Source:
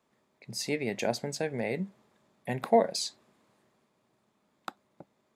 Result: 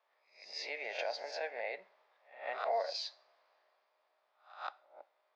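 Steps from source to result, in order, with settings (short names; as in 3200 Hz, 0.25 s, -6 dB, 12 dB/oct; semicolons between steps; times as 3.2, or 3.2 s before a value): spectral swells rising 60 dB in 0.37 s; limiter -20.5 dBFS, peak gain reduction 9.5 dB; elliptic band-pass 600–5300 Hz, stop band 60 dB; air absorption 140 m; pre-echo 0.147 s -18.5 dB; on a send at -17 dB: reverb, pre-delay 3 ms; on the sum: gain -1.5 dB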